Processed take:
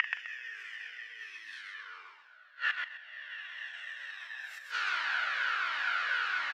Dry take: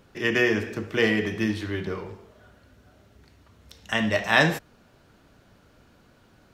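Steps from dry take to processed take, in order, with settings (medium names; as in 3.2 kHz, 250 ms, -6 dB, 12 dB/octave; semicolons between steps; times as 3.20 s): reverse spectral sustain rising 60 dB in 2.07 s; level-controlled noise filter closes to 2.7 kHz, open at -18.5 dBFS; peaking EQ 3.2 kHz +10 dB 3 oct; in parallel at -1 dB: compressor with a negative ratio -27 dBFS, ratio -0.5; on the sum: peak limiter -12.5 dBFS, peak gain reduction 17.5 dB; inverted gate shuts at -26 dBFS, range -32 dB; resonant high-pass 1.5 kHz, resonance Q 2.3; doubling 42 ms -13.5 dB; on a send: feedback delay 129 ms, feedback 24%, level -5 dB; on the sum: Shepard-style flanger falling 1.4 Hz; trim +8.5 dB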